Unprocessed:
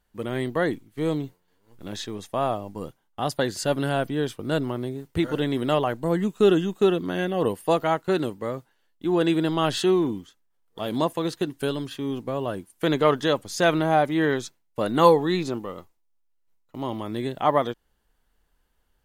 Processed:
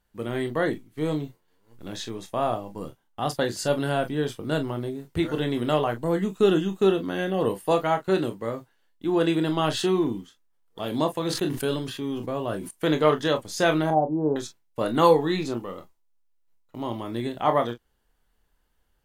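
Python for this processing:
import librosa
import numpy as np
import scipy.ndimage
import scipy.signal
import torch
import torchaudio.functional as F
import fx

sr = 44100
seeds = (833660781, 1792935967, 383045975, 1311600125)

y = fx.ellip_lowpass(x, sr, hz=920.0, order=4, stop_db=50, at=(13.9, 14.36))
y = fx.room_early_taps(y, sr, ms=(26, 42), db=(-8.5, -13.0))
y = fx.sustainer(y, sr, db_per_s=61.0, at=(11.2, 12.71))
y = y * 10.0 ** (-1.5 / 20.0)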